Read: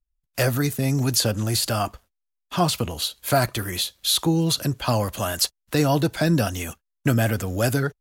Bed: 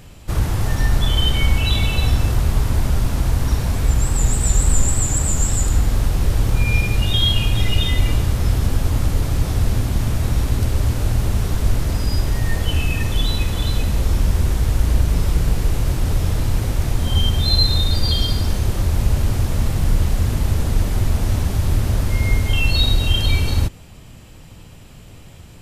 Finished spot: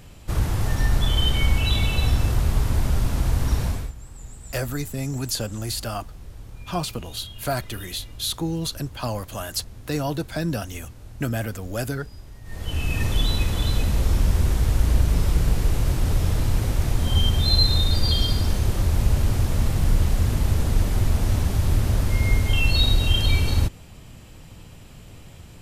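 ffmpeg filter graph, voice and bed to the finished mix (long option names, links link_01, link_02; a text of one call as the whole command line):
ffmpeg -i stem1.wav -i stem2.wav -filter_complex "[0:a]adelay=4150,volume=-6dB[link_01];[1:a]volume=17dB,afade=type=out:start_time=3.65:duration=0.27:silence=0.105925,afade=type=in:start_time=12.44:duration=0.6:silence=0.0944061[link_02];[link_01][link_02]amix=inputs=2:normalize=0" out.wav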